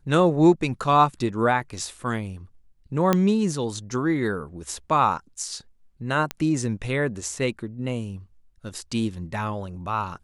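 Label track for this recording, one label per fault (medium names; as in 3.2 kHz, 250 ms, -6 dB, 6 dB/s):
3.130000	3.130000	pop -7 dBFS
6.310000	6.310000	pop -11 dBFS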